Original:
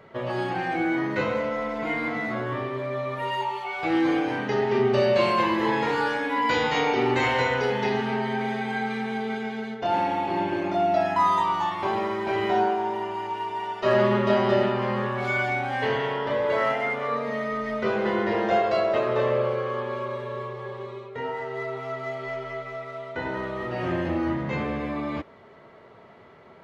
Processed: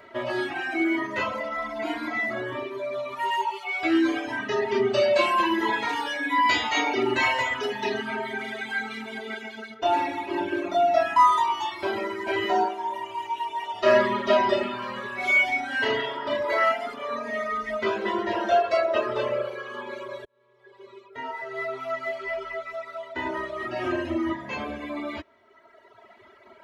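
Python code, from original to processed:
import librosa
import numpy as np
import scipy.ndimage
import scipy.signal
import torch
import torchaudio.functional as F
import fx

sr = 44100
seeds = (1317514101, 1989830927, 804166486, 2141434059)

y = fx.room_flutter(x, sr, wall_m=6.3, rt60_s=0.34, at=(13.73, 16.51), fade=0.02)
y = fx.edit(y, sr, fx.fade_in_span(start_s=20.25, length_s=1.58), tone=tone)
y = y + 0.86 * np.pad(y, (int(3.1 * sr / 1000.0), 0))[:len(y)]
y = fx.dereverb_blind(y, sr, rt60_s=1.9)
y = fx.tilt_eq(y, sr, slope=1.5)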